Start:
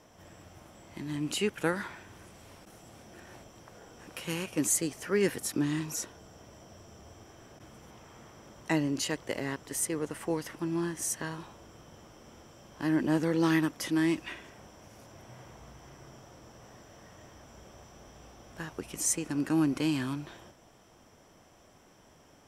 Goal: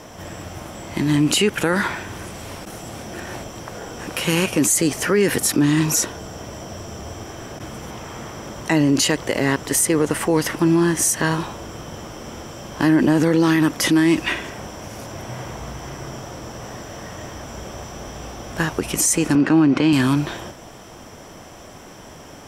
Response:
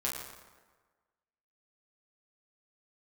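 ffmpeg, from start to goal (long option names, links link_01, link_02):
-filter_complex "[0:a]asettb=1/sr,asplit=3[link_01][link_02][link_03];[link_01]atrim=end=19.354[link_04];[link_02]atrim=start=19.35:end=19.93,asetpts=PTS-STARTPTS,afade=type=in:duration=0.004:curve=qsin,afade=type=out:start_time=0.576:duration=0.004:curve=qsin,highpass=110,lowpass=3600[link_05];[link_03]atrim=start=19.926[link_06];[link_04][link_05]acrossfade=duration=0.004:curve1=hsin:curve2=qsin[link_07];[link_07][link_06]acrossfade=duration=0.004:curve1=qsin:curve2=hsin,alimiter=level_in=26dB:limit=-1dB:release=50:level=0:latency=1,volume=-7.5dB"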